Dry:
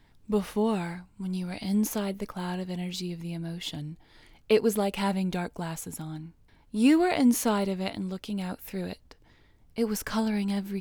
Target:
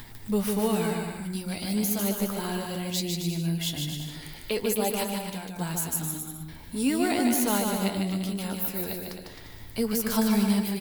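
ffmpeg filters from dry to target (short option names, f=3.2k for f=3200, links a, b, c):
-filter_complex "[0:a]aemphasis=mode=production:type=50fm,acompressor=mode=upward:threshold=-33dB:ratio=2.5,alimiter=limit=-17.5dB:level=0:latency=1:release=127,asettb=1/sr,asplit=3[a][b][c];[a]atrim=end=5.034[d];[b]atrim=start=5.03:end=5.6,asetpts=PTS-STARTPTS,afade=t=in:d=0.004:c=qsin,afade=t=out:st=0.566:d=0.004:c=qsin,acompressor=threshold=-39dB:ratio=3[e];[c]atrim=start=5.596[f];[d][e]acrossfade=d=0.004:c1=hsin:c2=qsin[g];[g][f]acrossfade=d=0.004:c1=qsin:c2=hsin,flanger=delay=8.2:depth=6:regen=44:speed=0.4:shape=triangular,aecho=1:1:150|262.5|346.9|410.2|457.6:0.631|0.398|0.251|0.158|0.1,volume=4.5dB"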